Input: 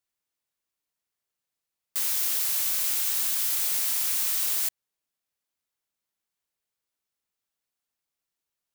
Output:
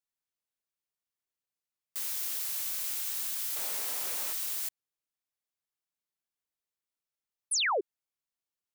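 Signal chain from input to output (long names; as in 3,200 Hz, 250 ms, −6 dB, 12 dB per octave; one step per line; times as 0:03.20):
0:03.56–0:04.33: parametric band 510 Hz +13 dB 2.6 octaves
0:07.51–0:07.81: sound drawn into the spectrogram fall 340–11,000 Hz −20 dBFS
level −8 dB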